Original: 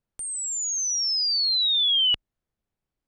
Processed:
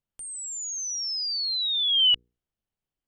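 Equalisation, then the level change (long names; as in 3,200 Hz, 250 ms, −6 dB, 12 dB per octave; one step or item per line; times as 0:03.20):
parametric band 3,000 Hz +7.5 dB 0.27 octaves
mains-hum notches 60/120/180/240/300/360/420/480 Hz
−5.5 dB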